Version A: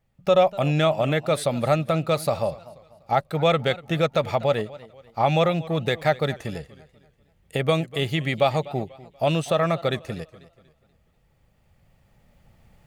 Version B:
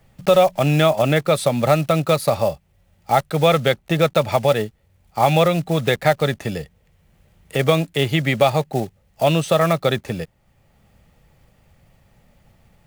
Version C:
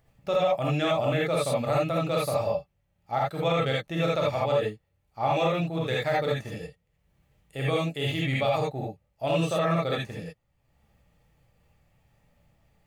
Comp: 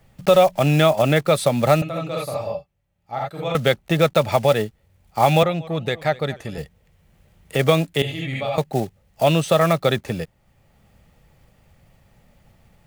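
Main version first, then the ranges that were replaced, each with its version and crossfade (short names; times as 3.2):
B
1.82–3.55 from C
5.43–6.58 from A
8.02–8.58 from C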